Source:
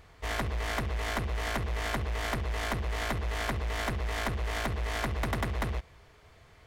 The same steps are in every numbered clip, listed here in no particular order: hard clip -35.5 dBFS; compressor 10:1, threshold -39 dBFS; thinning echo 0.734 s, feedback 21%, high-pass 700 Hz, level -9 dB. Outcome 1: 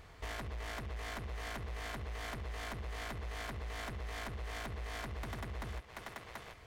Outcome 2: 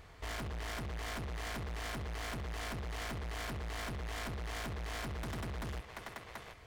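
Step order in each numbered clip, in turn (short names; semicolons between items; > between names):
thinning echo > compressor > hard clip; thinning echo > hard clip > compressor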